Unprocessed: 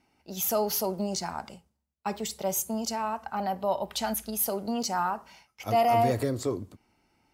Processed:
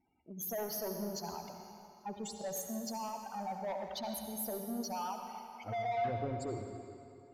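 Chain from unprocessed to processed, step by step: spectral gate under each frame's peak -10 dB strong; saturation -27 dBFS, distortion -11 dB; on a send: reverberation RT60 2.6 s, pre-delay 61 ms, DRR 4 dB; on the sum: trim -7 dB

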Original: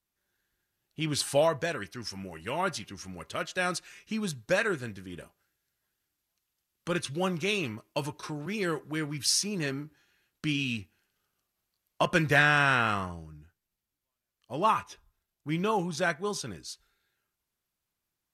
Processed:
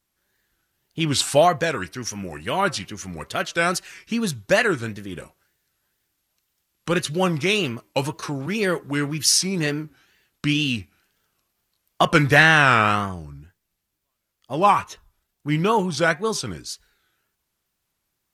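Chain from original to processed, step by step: wow and flutter 140 cents; trim +8.5 dB

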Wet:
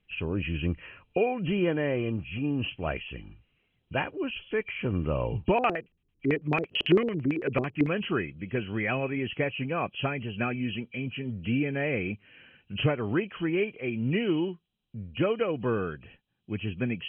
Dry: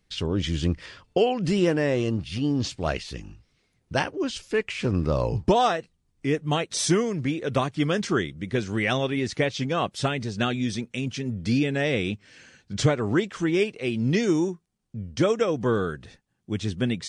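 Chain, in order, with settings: knee-point frequency compression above 2.3 kHz 4:1; 5.53–7.89 s: LFO low-pass square 9 Hz 380–2200 Hz; trim -4.5 dB

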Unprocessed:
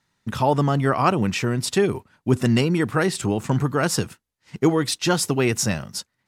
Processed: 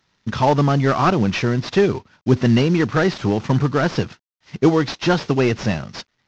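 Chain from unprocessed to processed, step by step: CVSD coder 32 kbps; trim +4 dB

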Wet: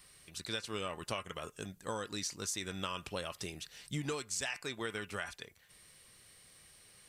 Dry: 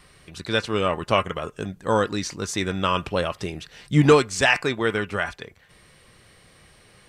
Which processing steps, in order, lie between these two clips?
pre-emphasis filter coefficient 0.8; compression 10:1, threshold -34 dBFS, peak gain reduction 12 dB

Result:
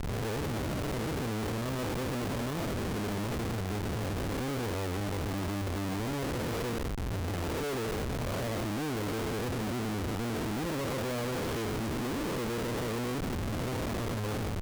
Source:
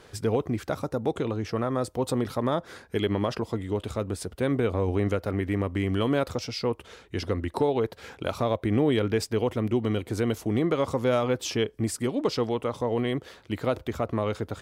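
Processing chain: spectral blur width 368 ms; Schmitt trigger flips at -37 dBFS; trim -2 dB

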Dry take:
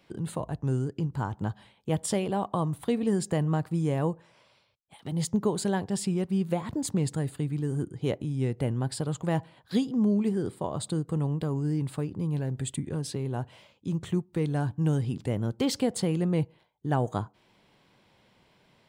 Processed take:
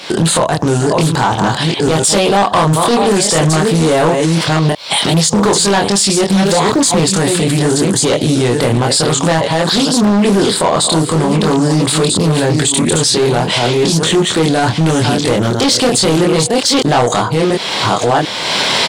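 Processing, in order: chunks repeated in reverse 675 ms, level -9 dB; recorder AGC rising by 30 dB/s; in parallel at -5.5 dB: saturation -26.5 dBFS, distortion -11 dB; on the sum: high-pass 350 Hz 6 dB/octave; treble shelf 9.2 kHz +5 dB; doubling 25 ms -3.5 dB; overload inside the chain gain 24.5 dB; overdrive pedal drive 3 dB, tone 4.1 kHz, clips at -24 dBFS; high-order bell 5.7 kHz +8.5 dB; loudness maximiser +32 dB; loudspeaker Doppler distortion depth 0.23 ms; trim -3.5 dB

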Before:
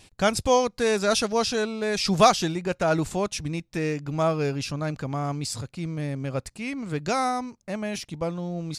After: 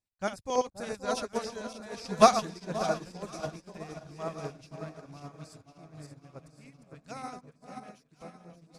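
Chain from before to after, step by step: backward echo that repeats 289 ms, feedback 64%, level -5 dB; LFO notch square 9 Hz 380–3100 Hz; on a send: echo whose repeats swap between lows and highs 527 ms, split 960 Hz, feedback 68%, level -6.5 dB; on the sum: upward expansion 2.5:1, over -38 dBFS

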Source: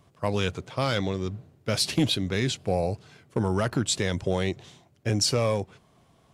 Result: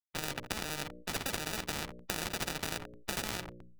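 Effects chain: gliding tape speed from 152% -> 182%; treble shelf 2.3 kHz +4.5 dB; bucket-brigade echo 85 ms, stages 2048, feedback 48%, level -17 dB; on a send at -15 dB: reverberation RT60 2.9 s, pre-delay 6 ms; on the sum: hysteresis with a dead band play -25 dBFS; compression 2.5:1, threshold -30 dBFS, peak gain reduction 8.5 dB; sample-and-hold 41×; tone controls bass +10 dB, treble -11 dB; hum notches 60/120/180/240/300/360/420/480/540/600 Hz; spectrum-flattening compressor 4:1

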